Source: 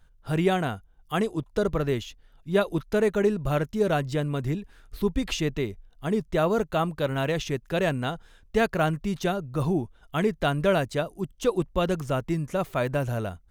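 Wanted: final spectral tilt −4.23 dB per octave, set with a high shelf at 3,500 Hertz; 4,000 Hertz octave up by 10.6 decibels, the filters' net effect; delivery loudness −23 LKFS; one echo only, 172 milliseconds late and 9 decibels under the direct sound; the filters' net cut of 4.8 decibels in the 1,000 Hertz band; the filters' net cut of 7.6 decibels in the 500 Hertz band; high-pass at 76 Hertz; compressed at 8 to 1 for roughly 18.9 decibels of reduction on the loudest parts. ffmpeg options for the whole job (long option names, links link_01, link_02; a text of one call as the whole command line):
ffmpeg -i in.wav -af "highpass=76,equalizer=frequency=500:width_type=o:gain=-9,equalizer=frequency=1000:width_type=o:gain=-5,highshelf=frequency=3500:gain=8,equalizer=frequency=4000:width_type=o:gain=9,acompressor=threshold=-39dB:ratio=8,aecho=1:1:172:0.355,volume=19dB" out.wav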